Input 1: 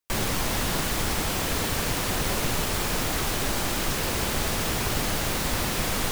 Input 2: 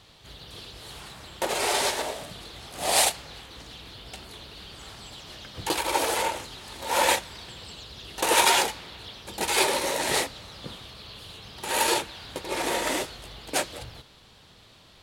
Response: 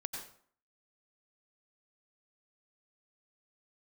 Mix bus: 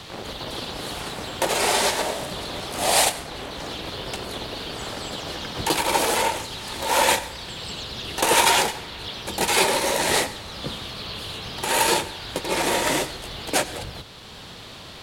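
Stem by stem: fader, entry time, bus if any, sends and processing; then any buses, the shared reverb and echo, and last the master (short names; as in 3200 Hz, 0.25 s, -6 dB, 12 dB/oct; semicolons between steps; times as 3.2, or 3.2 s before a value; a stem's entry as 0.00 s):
-7.5 dB, 0.00 s, send -4 dB, half-wave rectifier; band-pass 520 Hz, Q 0.76
+3.0 dB, 0.00 s, send -11.5 dB, octaver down 1 oct, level -6 dB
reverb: on, RT60 0.55 s, pre-delay 83 ms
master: three-band squash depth 40%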